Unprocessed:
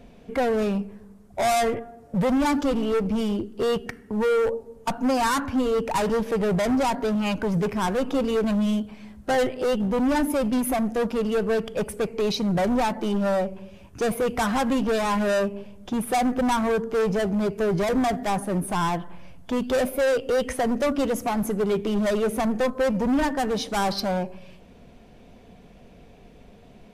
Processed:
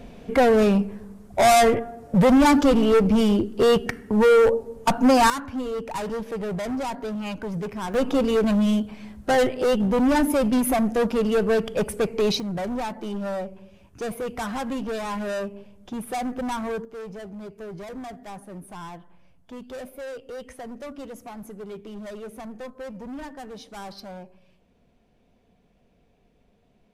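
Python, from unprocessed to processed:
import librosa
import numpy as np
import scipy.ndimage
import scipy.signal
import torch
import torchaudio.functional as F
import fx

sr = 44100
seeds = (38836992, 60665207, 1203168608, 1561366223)

y = fx.gain(x, sr, db=fx.steps((0.0, 6.0), (5.3, -6.0), (7.94, 2.5), (12.4, -6.0), (16.85, -14.0)))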